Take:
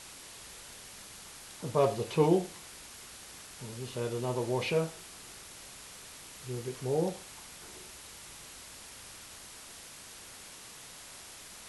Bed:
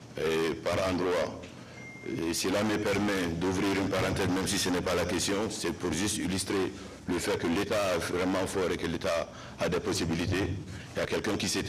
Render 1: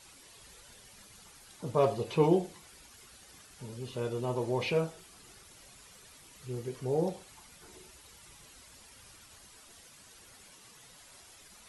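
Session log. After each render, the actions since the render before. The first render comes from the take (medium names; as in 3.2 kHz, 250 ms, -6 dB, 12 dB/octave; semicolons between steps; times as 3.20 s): noise reduction 10 dB, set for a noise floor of -49 dBFS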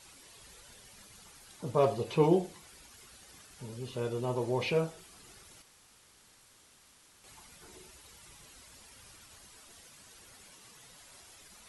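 5.62–7.24 s: room tone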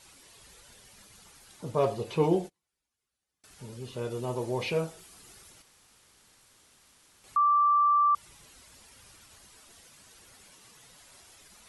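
2.35–3.44 s: gate -45 dBFS, range -32 dB; 4.10–5.51 s: treble shelf 7.4 kHz +5.5 dB; 7.36–8.15 s: bleep 1.17 kHz -19.5 dBFS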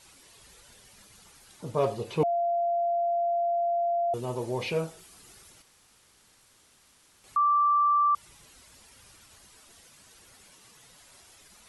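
2.23–4.14 s: bleep 689 Hz -23.5 dBFS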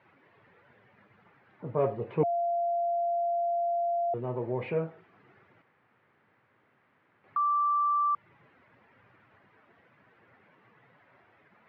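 elliptic band-pass 110–2000 Hz, stop band 60 dB; dynamic bell 1 kHz, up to -3 dB, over -36 dBFS, Q 1.1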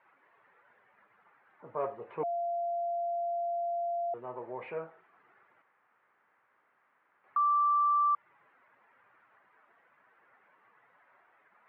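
band-pass filter 1.2 kHz, Q 1.1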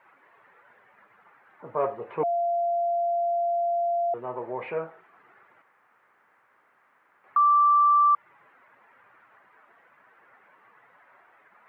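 trim +7.5 dB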